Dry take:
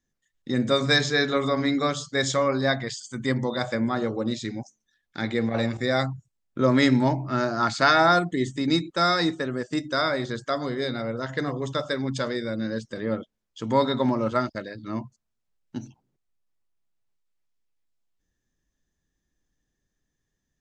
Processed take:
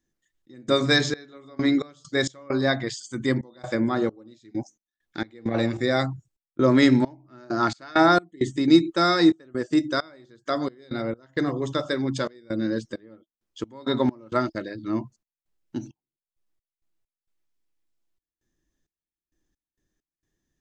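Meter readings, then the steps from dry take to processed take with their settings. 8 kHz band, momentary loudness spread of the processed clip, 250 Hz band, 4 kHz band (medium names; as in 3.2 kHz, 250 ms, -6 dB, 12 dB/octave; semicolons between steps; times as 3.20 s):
no reading, 18 LU, +3.0 dB, -1.5 dB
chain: peaking EQ 330 Hz +10 dB 0.35 oct; trance gate "xx.xx..x.x.xx" 66 bpm -24 dB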